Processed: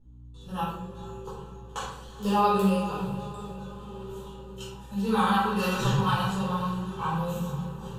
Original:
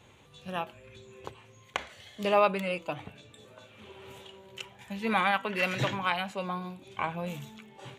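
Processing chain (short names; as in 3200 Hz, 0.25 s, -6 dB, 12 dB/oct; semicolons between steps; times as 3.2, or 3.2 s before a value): pre-emphasis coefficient 0.9; gate with hold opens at -56 dBFS; tilt -3 dB/oct; fixed phaser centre 430 Hz, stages 8; hum 60 Hz, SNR 21 dB; on a send: diffused feedback echo 0.455 s, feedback 57%, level -13 dB; on the sum: shoebox room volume 310 m³, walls mixed, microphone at 4.3 m; mismatched tape noise reduction decoder only; gain +8.5 dB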